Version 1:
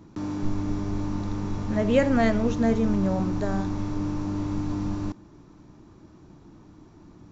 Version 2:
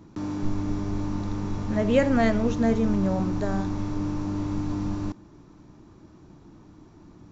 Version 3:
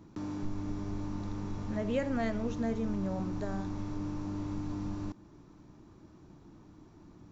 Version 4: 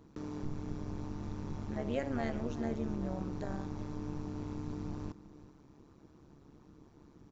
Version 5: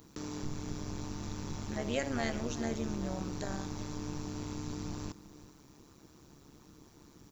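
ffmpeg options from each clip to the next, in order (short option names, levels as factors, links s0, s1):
-af anull
-af "acompressor=threshold=0.0224:ratio=1.5,volume=0.562"
-af "tremolo=f=140:d=0.824,aecho=1:1:379:0.15"
-af "crystalizer=i=6:c=0"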